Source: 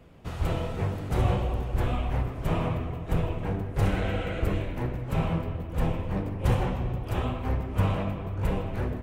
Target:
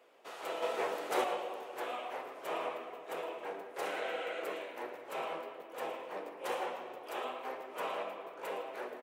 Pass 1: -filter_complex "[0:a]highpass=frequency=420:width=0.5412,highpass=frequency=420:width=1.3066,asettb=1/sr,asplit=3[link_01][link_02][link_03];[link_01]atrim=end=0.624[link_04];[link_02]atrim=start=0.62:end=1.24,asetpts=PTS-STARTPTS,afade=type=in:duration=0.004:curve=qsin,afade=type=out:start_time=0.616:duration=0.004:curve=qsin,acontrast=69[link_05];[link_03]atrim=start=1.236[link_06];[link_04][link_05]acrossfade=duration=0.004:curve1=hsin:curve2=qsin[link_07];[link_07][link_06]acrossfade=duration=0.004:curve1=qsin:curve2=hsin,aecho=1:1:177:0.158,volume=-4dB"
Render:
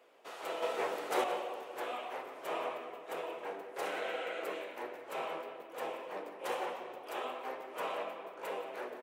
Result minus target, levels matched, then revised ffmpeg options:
echo 65 ms late
-filter_complex "[0:a]highpass=frequency=420:width=0.5412,highpass=frequency=420:width=1.3066,asettb=1/sr,asplit=3[link_01][link_02][link_03];[link_01]atrim=end=0.624[link_04];[link_02]atrim=start=0.62:end=1.24,asetpts=PTS-STARTPTS,afade=type=in:duration=0.004:curve=qsin,afade=type=out:start_time=0.616:duration=0.004:curve=qsin,acontrast=69[link_05];[link_03]atrim=start=1.236[link_06];[link_04][link_05]acrossfade=duration=0.004:curve1=hsin:curve2=qsin[link_07];[link_07][link_06]acrossfade=duration=0.004:curve1=qsin:curve2=hsin,aecho=1:1:112:0.158,volume=-4dB"

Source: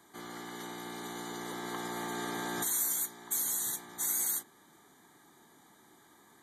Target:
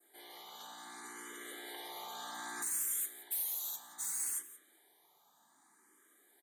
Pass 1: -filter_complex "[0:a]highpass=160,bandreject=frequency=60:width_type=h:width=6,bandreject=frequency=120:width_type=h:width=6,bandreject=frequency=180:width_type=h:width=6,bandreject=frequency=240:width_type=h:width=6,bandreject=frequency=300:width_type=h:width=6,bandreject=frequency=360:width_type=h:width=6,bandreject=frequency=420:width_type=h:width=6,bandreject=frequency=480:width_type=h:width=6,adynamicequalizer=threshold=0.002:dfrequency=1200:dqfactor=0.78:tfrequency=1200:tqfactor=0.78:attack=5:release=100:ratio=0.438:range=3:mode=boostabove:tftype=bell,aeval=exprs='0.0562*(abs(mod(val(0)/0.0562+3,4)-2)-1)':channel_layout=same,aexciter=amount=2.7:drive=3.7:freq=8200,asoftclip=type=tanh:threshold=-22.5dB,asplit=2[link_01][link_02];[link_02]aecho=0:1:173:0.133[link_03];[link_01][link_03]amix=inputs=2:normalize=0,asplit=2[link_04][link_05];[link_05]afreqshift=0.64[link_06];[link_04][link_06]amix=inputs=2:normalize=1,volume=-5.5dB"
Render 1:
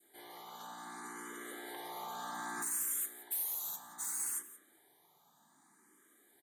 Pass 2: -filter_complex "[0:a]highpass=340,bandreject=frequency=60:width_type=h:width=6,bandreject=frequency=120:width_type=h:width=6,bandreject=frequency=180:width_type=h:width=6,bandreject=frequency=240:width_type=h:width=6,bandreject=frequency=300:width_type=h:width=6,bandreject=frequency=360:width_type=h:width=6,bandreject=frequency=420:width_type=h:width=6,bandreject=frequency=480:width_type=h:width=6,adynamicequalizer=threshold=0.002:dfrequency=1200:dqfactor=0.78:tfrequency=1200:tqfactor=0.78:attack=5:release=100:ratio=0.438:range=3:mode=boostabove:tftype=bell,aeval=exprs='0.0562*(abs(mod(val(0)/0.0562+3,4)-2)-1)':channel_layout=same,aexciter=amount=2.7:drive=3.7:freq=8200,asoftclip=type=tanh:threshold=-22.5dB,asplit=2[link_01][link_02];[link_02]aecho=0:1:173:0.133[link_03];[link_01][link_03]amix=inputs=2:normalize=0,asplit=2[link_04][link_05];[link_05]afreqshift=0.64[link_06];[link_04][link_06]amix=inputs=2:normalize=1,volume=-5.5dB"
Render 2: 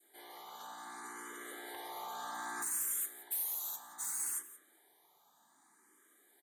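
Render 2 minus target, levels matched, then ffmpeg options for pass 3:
1,000 Hz band +4.0 dB
-filter_complex "[0:a]highpass=340,bandreject=frequency=60:width_type=h:width=6,bandreject=frequency=120:width_type=h:width=6,bandreject=frequency=180:width_type=h:width=6,bandreject=frequency=240:width_type=h:width=6,bandreject=frequency=300:width_type=h:width=6,bandreject=frequency=360:width_type=h:width=6,bandreject=frequency=420:width_type=h:width=6,bandreject=frequency=480:width_type=h:width=6,adynamicequalizer=threshold=0.002:dfrequency=2900:dqfactor=0.78:tfrequency=2900:tqfactor=0.78:attack=5:release=100:ratio=0.438:range=3:mode=boostabove:tftype=bell,aeval=exprs='0.0562*(abs(mod(val(0)/0.0562+3,4)-2)-1)':channel_layout=same,aexciter=amount=2.7:drive=3.7:freq=8200,asoftclip=type=tanh:threshold=-22.5dB,asplit=2[link_01][link_02];[link_02]aecho=0:1:173:0.133[link_03];[link_01][link_03]amix=inputs=2:normalize=0,asplit=2[link_04][link_05];[link_05]afreqshift=0.64[link_06];[link_04][link_06]amix=inputs=2:normalize=1,volume=-5.5dB"

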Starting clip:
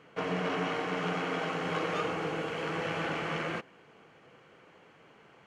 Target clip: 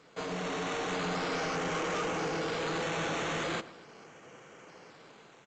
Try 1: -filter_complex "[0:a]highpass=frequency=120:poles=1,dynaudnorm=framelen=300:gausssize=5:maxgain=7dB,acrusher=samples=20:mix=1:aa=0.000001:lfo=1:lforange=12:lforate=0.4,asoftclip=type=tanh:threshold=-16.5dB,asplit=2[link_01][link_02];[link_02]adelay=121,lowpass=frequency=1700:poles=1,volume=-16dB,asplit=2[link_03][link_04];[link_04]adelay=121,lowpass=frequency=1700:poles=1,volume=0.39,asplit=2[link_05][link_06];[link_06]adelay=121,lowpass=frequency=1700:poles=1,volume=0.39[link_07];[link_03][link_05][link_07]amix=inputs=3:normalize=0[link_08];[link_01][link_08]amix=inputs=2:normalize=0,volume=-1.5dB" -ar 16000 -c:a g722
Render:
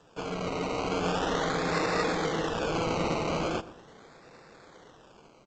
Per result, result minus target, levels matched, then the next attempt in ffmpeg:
soft clipping: distortion −13 dB; sample-and-hold swept by an LFO: distortion +9 dB
-filter_complex "[0:a]highpass=frequency=120:poles=1,dynaudnorm=framelen=300:gausssize=5:maxgain=7dB,acrusher=samples=20:mix=1:aa=0.000001:lfo=1:lforange=12:lforate=0.4,asoftclip=type=tanh:threshold=-28dB,asplit=2[link_01][link_02];[link_02]adelay=121,lowpass=frequency=1700:poles=1,volume=-16dB,asplit=2[link_03][link_04];[link_04]adelay=121,lowpass=frequency=1700:poles=1,volume=0.39,asplit=2[link_05][link_06];[link_06]adelay=121,lowpass=frequency=1700:poles=1,volume=0.39[link_07];[link_03][link_05][link_07]amix=inputs=3:normalize=0[link_08];[link_01][link_08]amix=inputs=2:normalize=0,volume=-1.5dB" -ar 16000 -c:a g722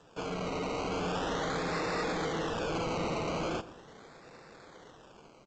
sample-and-hold swept by an LFO: distortion +9 dB
-filter_complex "[0:a]highpass=frequency=120:poles=1,dynaudnorm=framelen=300:gausssize=5:maxgain=7dB,acrusher=samples=7:mix=1:aa=0.000001:lfo=1:lforange=4.2:lforate=0.4,asoftclip=type=tanh:threshold=-28dB,asplit=2[link_01][link_02];[link_02]adelay=121,lowpass=frequency=1700:poles=1,volume=-16dB,asplit=2[link_03][link_04];[link_04]adelay=121,lowpass=frequency=1700:poles=1,volume=0.39,asplit=2[link_05][link_06];[link_06]adelay=121,lowpass=frequency=1700:poles=1,volume=0.39[link_07];[link_03][link_05][link_07]amix=inputs=3:normalize=0[link_08];[link_01][link_08]amix=inputs=2:normalize=0,volume=-1.5dB" -ar 16000 -c:a g722

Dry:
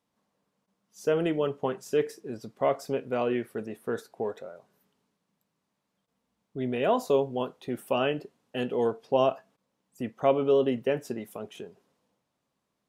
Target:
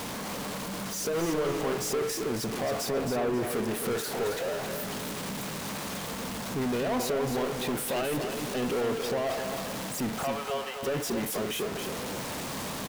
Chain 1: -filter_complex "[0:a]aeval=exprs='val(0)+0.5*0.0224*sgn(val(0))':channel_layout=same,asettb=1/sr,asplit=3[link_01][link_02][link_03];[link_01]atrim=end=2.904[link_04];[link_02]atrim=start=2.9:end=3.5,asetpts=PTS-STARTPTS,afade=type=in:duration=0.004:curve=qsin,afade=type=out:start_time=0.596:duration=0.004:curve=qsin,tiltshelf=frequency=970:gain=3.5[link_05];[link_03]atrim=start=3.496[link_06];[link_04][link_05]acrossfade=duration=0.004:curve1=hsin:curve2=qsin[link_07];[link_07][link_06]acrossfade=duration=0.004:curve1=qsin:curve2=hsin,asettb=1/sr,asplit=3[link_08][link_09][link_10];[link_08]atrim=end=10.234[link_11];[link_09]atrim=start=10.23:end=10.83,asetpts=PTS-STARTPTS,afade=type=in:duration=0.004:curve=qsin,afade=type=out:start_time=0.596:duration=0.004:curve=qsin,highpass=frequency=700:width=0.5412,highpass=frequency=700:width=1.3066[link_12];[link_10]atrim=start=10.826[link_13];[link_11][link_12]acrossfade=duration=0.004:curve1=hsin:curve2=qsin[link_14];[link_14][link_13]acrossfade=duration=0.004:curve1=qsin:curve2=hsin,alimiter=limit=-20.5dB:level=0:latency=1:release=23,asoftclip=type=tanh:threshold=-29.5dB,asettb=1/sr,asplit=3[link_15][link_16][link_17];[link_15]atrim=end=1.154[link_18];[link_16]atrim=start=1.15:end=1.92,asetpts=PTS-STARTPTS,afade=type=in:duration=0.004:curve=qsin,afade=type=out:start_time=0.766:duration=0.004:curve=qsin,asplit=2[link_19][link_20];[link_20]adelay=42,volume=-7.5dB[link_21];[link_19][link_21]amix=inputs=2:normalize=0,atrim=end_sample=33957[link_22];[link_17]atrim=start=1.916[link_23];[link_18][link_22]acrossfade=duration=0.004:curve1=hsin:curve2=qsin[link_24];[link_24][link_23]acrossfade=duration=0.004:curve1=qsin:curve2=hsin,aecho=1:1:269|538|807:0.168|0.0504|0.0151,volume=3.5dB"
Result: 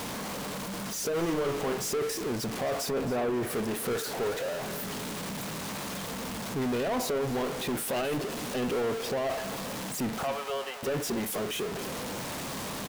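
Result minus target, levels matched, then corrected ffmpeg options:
echo-to-direct −8.5 dB
-filter_complex "[0:a]aeval=exprs='val(0)+0.5*0.0224*sgn(val(0))':channel_layout=same,asettb=1/sr,asplit=3[link_01][link_02][link_03];[link_01]atrim=end=2.904[link_04];[link_02]atrim=start=2.9:end=3.5,asetpts=PTS-STARTPTS,afade=type=in:duration=0.004:curve=qsin,afade=type=out:start_time=0.596:duration=0.004:curve=qsin,tiltshelf=frequency=970:gain=3.5[link_05];[link_03]atrim=start=3.496[link_06];[link_04][link_05]acrossfade=duration=0.004:curve1=hsin:curve2=qsin[link_07];[link_07][link_06]acrossfade=duration=0.004:curve1=qsin:curve2=hsin,asettb=1/sr,asplit=3[link_08][link_09][link_10];[link_08]atrim=end=10.234[link_11];[link_09]atrim=start=10.23:end=10.83,asetpts=PTS-STARTPTS,afade=type=in:duration=0.004:curve=qsin,afade=type=out:start_time=0.596:duration=0.004:curve=qsin,highpass=frequency=700:width=0.5412,highpass=frequency=700:width=1.3066[link_12];[link_10]atrim=start=10.826[link_13];[link_11][link_12]acrossfade=duration=0.004:curve1=hsin:curve2=qsin[link_14];[link_14][link_13]acrossfade=duration=0.004:curve1=qsin:curve2=hsin,alimiter=limit=-20.5dB:level=0:latency=1:release=23,asoftclip=type=tanh:threshold=-29.5dB,asettb=1/sr,asplit=3[link_15][link_16][link_17];[link_15]atrim=end=1.154[link_18];[link_16]atrim=start=1.15:end=1.92,asetpts=PTS-STARTPTS,afade=type=in:duration=0.004:curve=qsin,afade=type=out:start_time=0.766:duration=0.004:curve=qsin,asplit=2[link_19][link_20];[link_20]adelay=42,volume=-7.5dB[link_21];[link_19][link_21]amix=inputs=2:normalize=0,atrim=end_sample=33957[link_22];[link_17]atrim=start=1.916[link_23];[link_18][link_22]acrossfade=duration=0.004:curve1=hsin:curve2=qsin[link_24];[link_24][link_23]acrossfade=duration=0.004:curve1=qsin:curve2=hsin,aecho=1:1:269|538|807|1076:0.447|0.134|0.0402|0.0121,volume=3.5dB"

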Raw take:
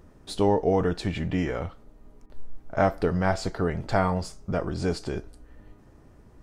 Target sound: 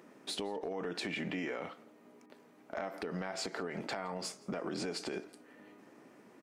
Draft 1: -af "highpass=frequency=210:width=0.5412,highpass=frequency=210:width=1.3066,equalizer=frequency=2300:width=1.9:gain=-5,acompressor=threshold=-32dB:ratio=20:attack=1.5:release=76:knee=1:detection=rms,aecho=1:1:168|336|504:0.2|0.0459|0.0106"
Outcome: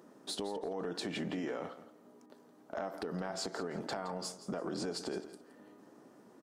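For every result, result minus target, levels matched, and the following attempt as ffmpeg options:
echo-to-direct +10 dB; 2,000 Hz band −4.5 dB
-af "highpass=frequency=210:width=0.5412,highpass=frequency=210:width=1.3066,equalizer=frequency=2300:width=1.9:gain=-5,acompressor=threshold=-32dB:ratio=20:attack=1.5:release=76:knee=1:detection=rms,aecho=1:1:168|336:0.0631|0.0145"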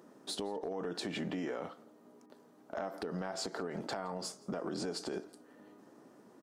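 2,000 Hz band −4.5 dB
-af "highpass=frequency=210:width=0.5412,highpass=frequency=210:width=1.3066,equalizer=frequency=2300:width=1.9:gain=6.5,acompressor=threshold=-32dB:ratio=20:attack=1.5:release=76:knee=1:detection=rms,aecho=1:1:168|336:0.0631|0.0145"

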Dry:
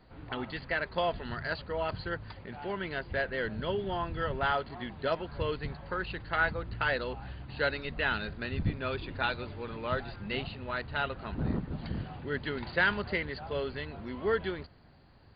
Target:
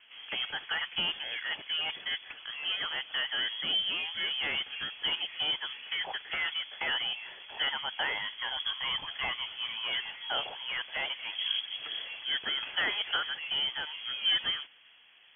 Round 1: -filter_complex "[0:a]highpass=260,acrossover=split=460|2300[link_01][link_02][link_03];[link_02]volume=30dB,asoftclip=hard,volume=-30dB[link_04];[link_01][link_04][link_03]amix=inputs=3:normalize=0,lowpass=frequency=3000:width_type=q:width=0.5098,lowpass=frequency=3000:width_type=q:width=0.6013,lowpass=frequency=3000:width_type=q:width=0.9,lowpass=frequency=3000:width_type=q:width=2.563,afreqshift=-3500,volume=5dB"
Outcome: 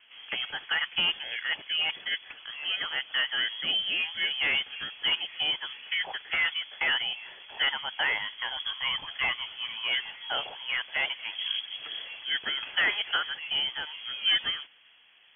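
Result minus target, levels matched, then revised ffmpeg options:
gain into a clipping stage and back: distortion −8 dB
-filter_complex "[0:a]highpass=260,acrossover=split=460|2300[link_01][link_02][link_03];[link_02]volume=41dB,asoftclip=hard,volume=-41dB[link_04];[link_01][link_04][link_03]amix=inputs=3:normalize=0,lowpass=frequency=3000:width_type=q:width=0.5098,lowpass=frequency=3000:width_type=q:width=0.6013,lowpass=frequency=3000:width_type=q:width=0.9,lowpass=frequency=3000:width_type=q:width=2.563,afreqshift=-3500,volume=5dB"

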